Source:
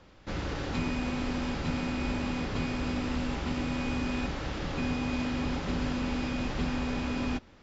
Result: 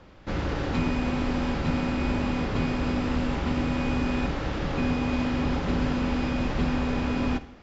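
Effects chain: high shelf 3500 Hz -8 dB; reverb RT60 0.80 s, pre-delay 38 ms, DRR 14 dB; gain +5.5 dB

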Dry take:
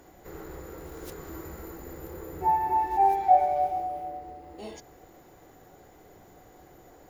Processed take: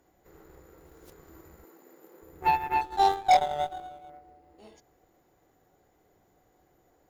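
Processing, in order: 2.81–4.1 median filter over 25 samples; added harmonics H 3 -25 dB, 5 -16 dB, 6 -29 dB, 7 -14 dB, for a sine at -10.5 dBFS; 1.64–2.22 HPF 220 Hz 24 dB/oct

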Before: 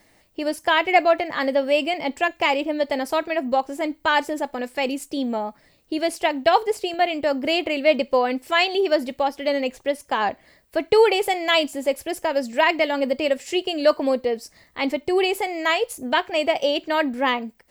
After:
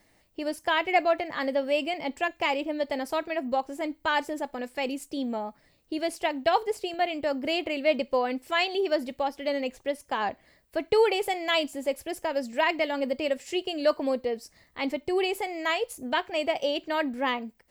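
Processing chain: low shelf 150 Hz +3.5 dB; gain -6.5 dB

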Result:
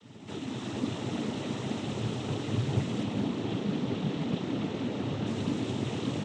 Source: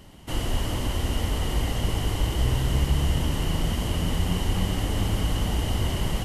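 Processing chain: opening faded in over 0.65 s; bell 230 Hz +13.5 dB 0.67 oct; upward compressor, threshold -22 dBFS; resonator bank A2 minor, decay 0.26 s; noise vocoder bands 12; 3.03–5.27 air absorption 94 m; frequency-shifting echo 0.203 s, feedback 60%, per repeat +89 Hz, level -9 dB; Doppler distortion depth 0.28 ms; gain +5 dB

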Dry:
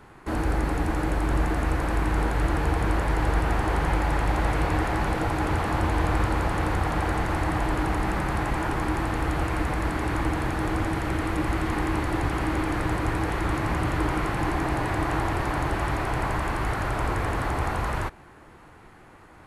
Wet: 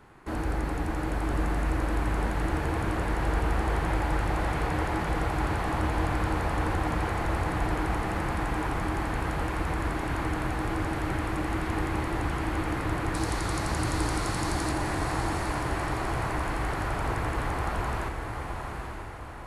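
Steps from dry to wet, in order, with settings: 13.14–14.72 band shelf 6500 Hz +12.5 dB; diffused feedback echo 0.858 s, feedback 47%, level -5 dB; gain -4.5 dB

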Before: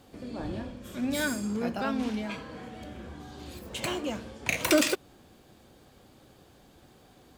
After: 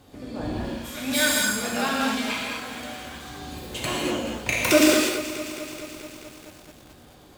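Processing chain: 0.64–3.3 tilt shelf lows -8 dB, about 750 Hz; non-linear reverb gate 0.27 s flat, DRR -3 dB; lo-fi delay 0.215 s, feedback 80%, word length 7-bit, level -13 dB; gain +1.5 dB

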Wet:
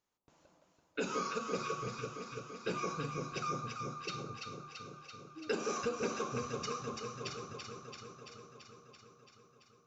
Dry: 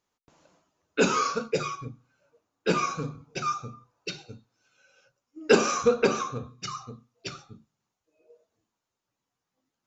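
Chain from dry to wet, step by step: compressor 3:1, threshold -30 dBFS, peak gain reduction 13 dB; on a send: echo with dull and thin repeats by turns 0.168 s, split 1100 Hz, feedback 84%, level -3 dB; on the sum: gain -6 dB

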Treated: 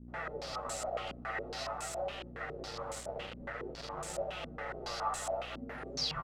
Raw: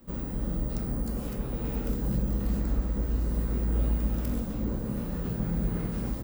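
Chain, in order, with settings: tape stop at the end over 0.90 s; spectral gate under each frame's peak -20 dB weak; notches 50/100/150/200/250/300/350 Hz; comb 1.5 ms, depth 68%; negative-ratio compressor -47 dBFS, ratio -1; resonator 51 Hz, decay 0.38 s, harmonics odd, mix 90%; on a send: echo with dull and thin repeats by turns 0.2 s, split 1000 Hz, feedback 52%, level -5 dB; on the sum: flange 0.47 Hz, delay 4.9 ms, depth 5.7 ms, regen +5%; bit-crush 10-bit; buzz 60 Hz, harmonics 33, -70 dBFS -6 dB/oct; stepped low-pass 7.2 Hz 250–7900 Hz; gain +17 dB

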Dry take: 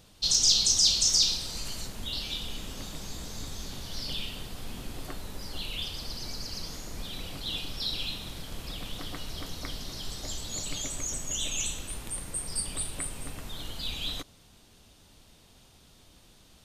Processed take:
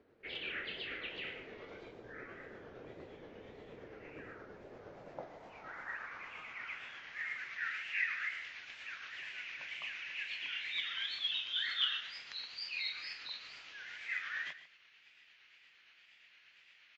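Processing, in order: wow and flutter 140 cents; band-pass sweep 890 Hz -> 5200 Hz, 4.42–7.64; granular stretch 0.51×, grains 0.116 s; on a send: early reflections 55 ms -17 dB, 75 ms -16.5 dB; on the sum: speed mistake 15 ips tape played at 7.5 ips; gain +4 dB

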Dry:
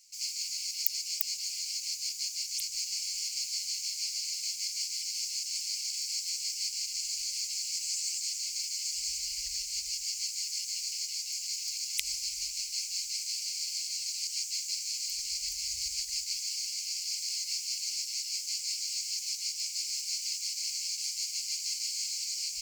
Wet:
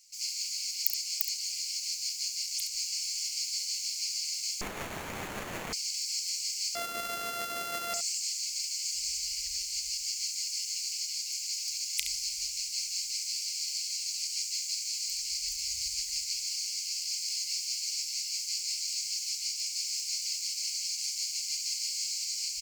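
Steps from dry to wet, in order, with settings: 6.75–7.94 sample sorter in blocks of 64 samples; early reflections 34 ms -13.5 dB, 69 ms -8.5 dB; 4.61–5.73 running maximum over 9 samples

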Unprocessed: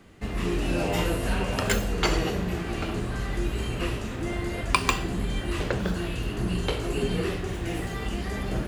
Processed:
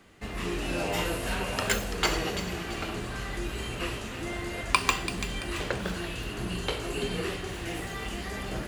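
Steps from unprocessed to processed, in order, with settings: low shelf 450 Hz -7.5 dB; thin delay 0.336 s, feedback 37%, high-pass 2100 Hz, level -8 dB

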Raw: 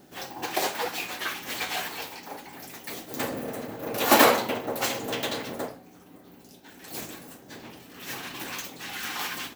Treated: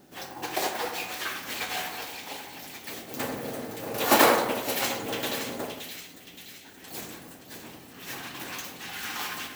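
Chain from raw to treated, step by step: split-band echo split 2000 Hz, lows 89 ms, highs 0.572 s, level -7.5 dB; modulation noise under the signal 16 dB; gain -2 dB

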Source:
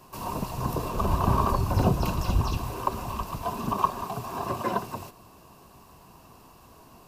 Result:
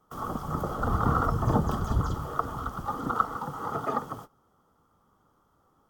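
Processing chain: gate -44 dBFS, range -13 dB; varispeed +20%; resonant high shelf 1600 Hz -6.5 dB, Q 1.5; gain -2 dB

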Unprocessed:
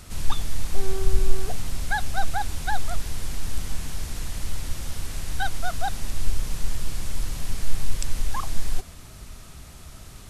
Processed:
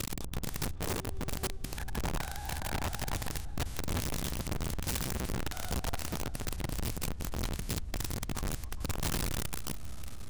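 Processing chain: stepped spectrum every 0.2 s; bell 64 Hz +9 dB 0.41 oct; compressor 2.5:1, threshold -33 dBFS, peak gain reduction 14 dB; half-wave rectifier; repeats that get brighter 0.14 s, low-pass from 400 Hz, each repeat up 1 oct, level -3 dB; wrapped overs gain 29.5 dB

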